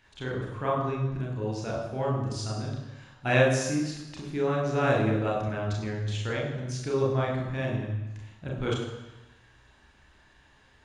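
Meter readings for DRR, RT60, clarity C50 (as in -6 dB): -1.5 dB, 1.0 s, 3.5 dB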